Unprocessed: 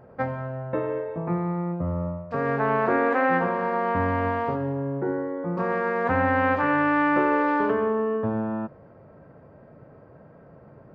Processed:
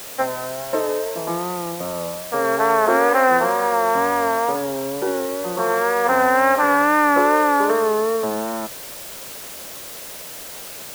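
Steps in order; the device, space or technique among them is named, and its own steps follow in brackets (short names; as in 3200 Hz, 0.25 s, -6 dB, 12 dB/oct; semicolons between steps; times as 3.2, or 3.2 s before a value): wax cylinder (BPF 390–2100 Hz; wow and flutter; white noise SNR 15 dB); gain +7.5 dB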